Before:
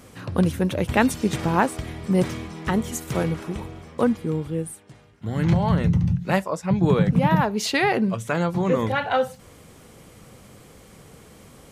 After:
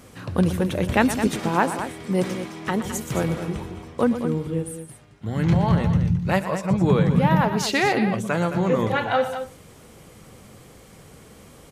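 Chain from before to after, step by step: 1.27–2.85 s: Bessel high-pass 200 Hz, order 2; loudspeakers at several distances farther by 41 m -12 dB, 74 m -10 dB

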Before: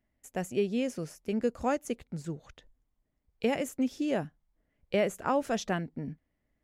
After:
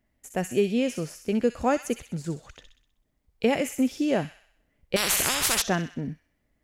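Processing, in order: feedback echo behind a high-pass 63 ms, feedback 51%, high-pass 2.2 kHz, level -5 dB; 4.96–5.62 s: spectrum-flattening compressor 10:1; trim +5.5 dB

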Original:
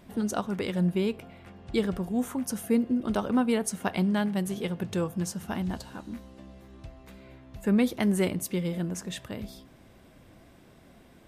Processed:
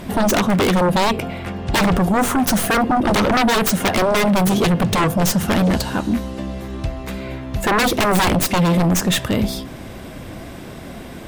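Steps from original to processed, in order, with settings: tracing distortion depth 0.2 ms; sine folder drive 17 dB, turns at -12.5 dBFS

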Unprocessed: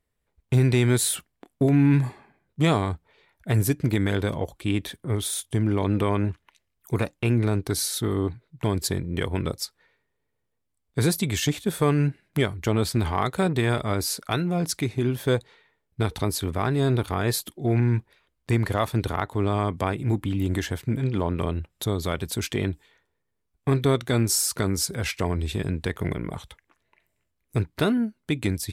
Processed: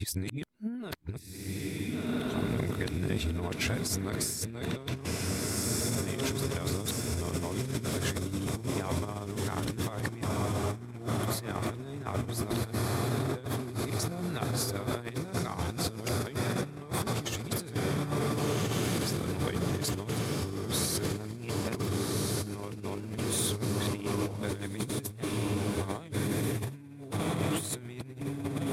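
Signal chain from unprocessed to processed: reverse the whole clip; echo that smears into a reverb 1485 ms, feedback 70%, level -4.5 dB; compressor with a negative ratio -26 dBFS, ratio -0.5; trim -6 dB

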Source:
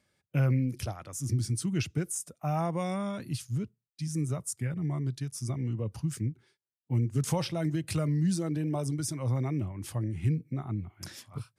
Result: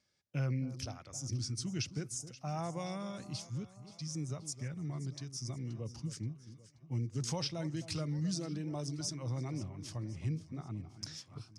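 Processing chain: low-pass 7.1 kHz 12 dB/octave; peaking EQ 5.5 kHz +12.5 dB 0.94 oct; on a send: echo whose repeats swap between lows and highs 264 ms, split 1.2 kHz, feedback 69%, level -13 dB; on the sum: trim -8.5 dB

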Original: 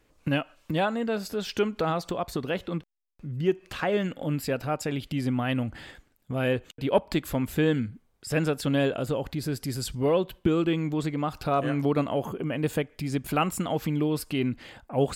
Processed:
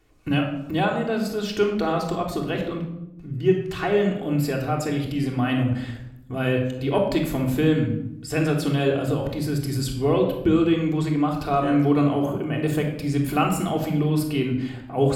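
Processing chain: simulated room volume 2300 m³, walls furnished, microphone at 3.4 m

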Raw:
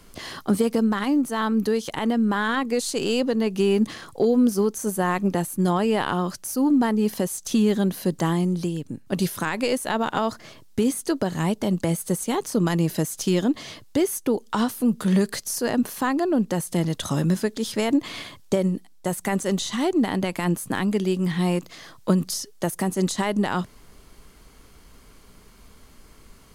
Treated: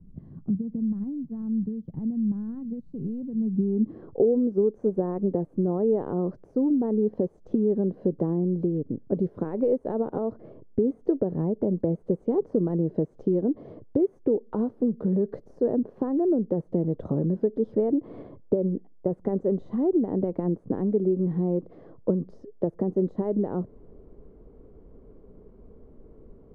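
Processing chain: dynamic bell 2.7 kHz, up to -5 dB, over -46 dBFS, Q 2.4; compression, threshold -24 dBFS, peak gain reduction 9 dB; low-pass sweep 170 Hz -> 460 Hz, 3.36–4.13 s

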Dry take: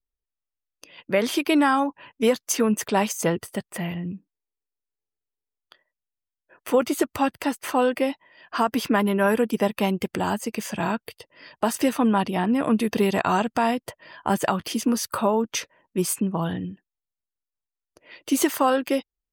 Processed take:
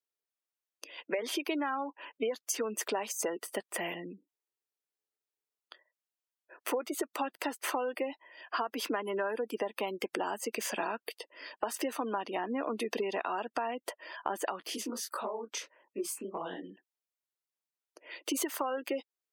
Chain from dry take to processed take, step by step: high-pass 310 Hz 24 dB/octave; spectral gate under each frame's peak -25 dB strong; compression 10:1, threshold -30 dBFS, peak gain reduction 15 dB; 14.65–16.70 s: detune thickener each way 58 cents

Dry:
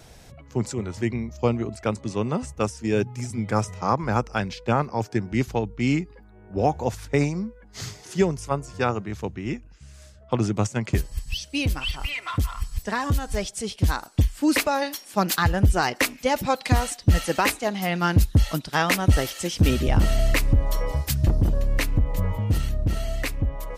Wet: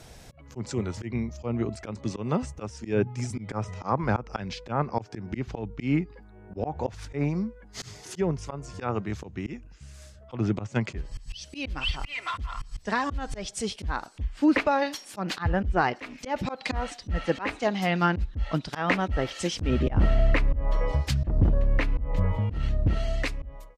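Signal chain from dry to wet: fade out at the end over 0.57 s; low-pass that closes with the level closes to 2.1 kHz, closed at -17 dBFS; slow attack 150 ms

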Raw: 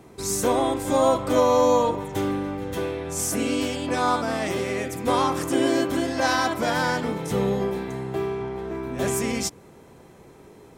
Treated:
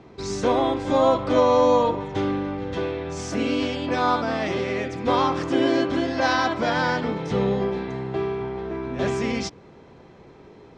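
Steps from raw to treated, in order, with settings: low-pass 5.1 kHz 24 dB/octave; trim +1 dB

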